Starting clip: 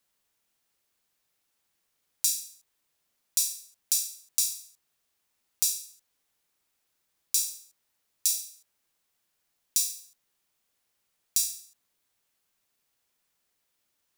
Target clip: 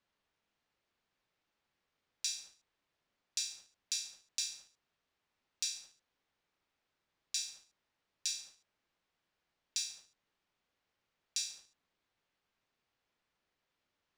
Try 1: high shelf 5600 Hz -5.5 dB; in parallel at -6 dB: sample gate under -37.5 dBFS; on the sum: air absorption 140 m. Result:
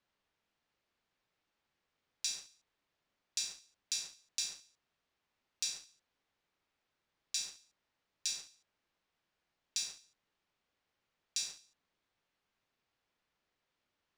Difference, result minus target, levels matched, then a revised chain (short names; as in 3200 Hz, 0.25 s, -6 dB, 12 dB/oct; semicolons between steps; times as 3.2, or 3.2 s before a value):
sample gate: distortion +10 dB
high shelf 5600 Hz -5.5 dB; in parallel at -6 dB: sample gate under -48 dBFS; on the sum: air absorption 140 m